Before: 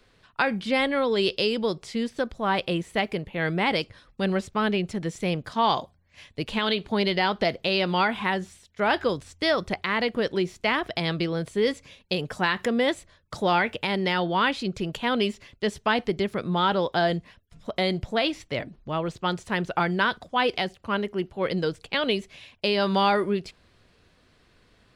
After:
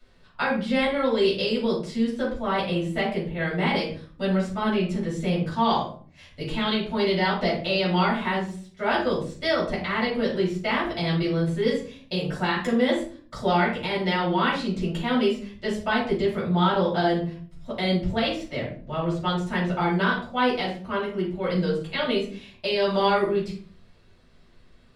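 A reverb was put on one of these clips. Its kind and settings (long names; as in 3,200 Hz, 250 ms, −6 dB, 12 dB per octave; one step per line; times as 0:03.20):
rectangular room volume 340 cubic metres, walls furnished, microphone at 7 metres
level −11 dB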